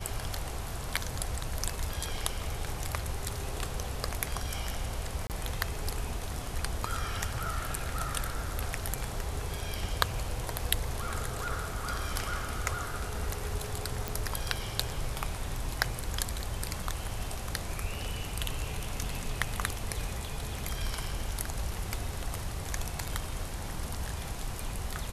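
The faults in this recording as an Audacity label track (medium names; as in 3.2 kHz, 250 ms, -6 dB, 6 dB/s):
5.270000	5.300000	dropout 28 ms
14.080000	14.080000	pop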